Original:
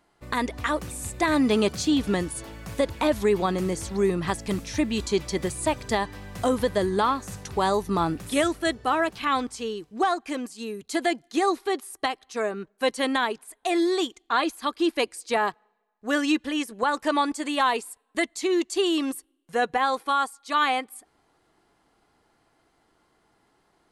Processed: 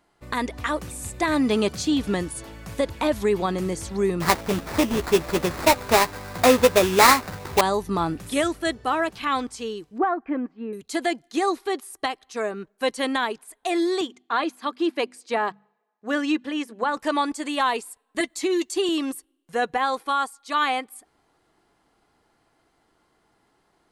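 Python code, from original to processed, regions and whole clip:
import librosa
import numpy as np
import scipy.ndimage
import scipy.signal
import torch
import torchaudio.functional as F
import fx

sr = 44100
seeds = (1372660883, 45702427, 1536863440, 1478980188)

y = fx.chain(x, sr, fx.peak_eq(hz=890.0, db=9.0, octaves=2.6),
    fx.sample_hold(seeds[0], rate_hz=3100.0, jitter_pct=20),
    fx.doubler(ms=12.0, db=-9.0), at=(4.2, 7.61))
y = fx.chain(y, sr, fx.lowpass(hz=1900.0, slope=24),
    fx.peak_eq(hz=280.0, db=6.0, octaves=0.56), at=(9.98, 10.73))
y = fx.chain(y, sr, fx.highpass(hz=100.0, slope=24),
    fx.high_shelf(hz=5300.0, db=-10.5),
    fx.hum_notches(base_hz=50, count=5), at=(14.01, 16.97))
y = fx.chain(y, sr, fx.high_shelf(hz=11000.0, db=6.0),
    fx.notch_comb(f0_hz=230.0),
    fx.band_squash(depth_pct=70), at=(18.2, 18.89))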